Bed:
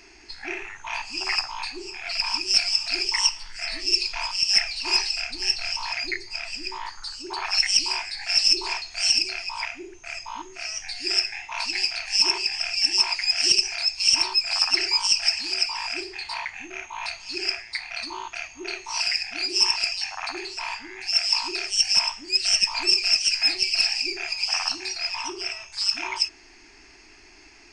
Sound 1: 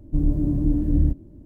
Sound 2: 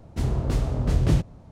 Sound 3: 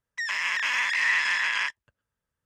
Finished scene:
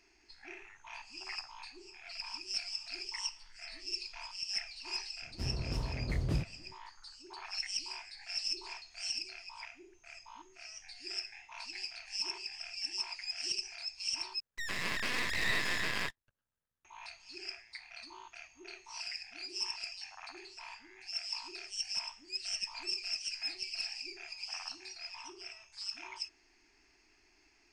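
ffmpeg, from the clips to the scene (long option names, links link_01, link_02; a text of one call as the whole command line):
ffmpeg -i bed.wav -i cue0.wav -i cue1.wav -i cue2.wav -filter_complex "[0:a]volume=-17dB[link_01];[3:a]aeval=exprs='max(val(0),0)':channel_layout=same[link_02];[link_01]asplit=2[link_03][link_04];[link_03]atrim=end=14.404[link_05];[link_02]atrim=end=2.45,asetpts=PTS-STARTPTS,volume=-4.5dB[link_06];[link_04]atrim=start=16.846[link_07];[2:a]atrim=end=1.51,asetpts=PTS-STARTPTS,volume=-12.5dB,afade=type=in:duration=0.004:curve=hsin,afade=type=out:start_time=1.506:duration=0.004:curve=hsin,adelay=5220[link_08];[link_05][link_06]acrossfade=duration=0.004:curve1=hsin:curve2=hsin[link_09];[link_09][link_07]acrossfade=duration=0.004:curve1=hsin:curve2=hsin[link_10];[link_10][link_08]amix=inputs=2:normalize=0" out.wav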